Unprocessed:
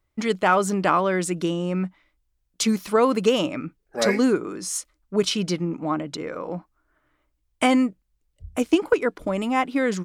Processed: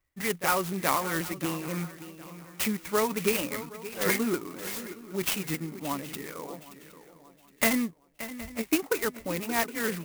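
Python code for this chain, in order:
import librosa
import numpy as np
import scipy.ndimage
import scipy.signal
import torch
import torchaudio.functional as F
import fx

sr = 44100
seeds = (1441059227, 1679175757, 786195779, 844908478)

y = fx.pitch_ramps(x, sr, semitones=-2.5, every_ms=241)
y = fx.peak_eq(y, sr, hz=2200.0, db=11.5, octaves=1.1)
y = fx.echo_swing(y, sr, ms=767, ratio=3, feedback_pct=30, wet_db=-14)
y = fx.clock_jitter(y, sr, seeds[0], jitter_ms=0.065)
y = F.gain(torch.from_numpy(y), -8.0).numpy()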